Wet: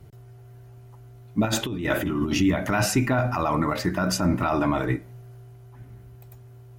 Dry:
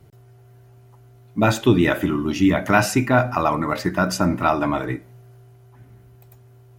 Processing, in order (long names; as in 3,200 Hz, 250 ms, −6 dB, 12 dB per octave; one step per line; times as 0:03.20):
brickwall limiter −13.5 dBFS, peak gain reduction 11 dB
low-shelf EQ 90 Hz +7.5 dB
0:01.45–0:02.41: compressor whose output falls as the input rises −24 dBFS, ratio −0.5